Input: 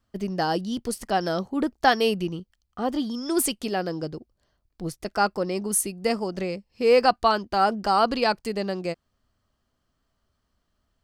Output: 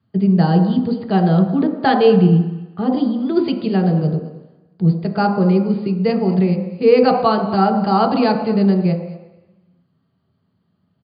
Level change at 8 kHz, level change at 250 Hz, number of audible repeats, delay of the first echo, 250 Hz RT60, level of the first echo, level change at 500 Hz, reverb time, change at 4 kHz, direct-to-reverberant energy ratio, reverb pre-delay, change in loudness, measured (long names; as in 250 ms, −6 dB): below −40 dB, +14.0 dB, 1, 223 ms, 0.90 s, −17.5 dB, +7.5 dB, 1.0 s, 0.0 dB, 1.5 dB, 3 ms, +8.5 dB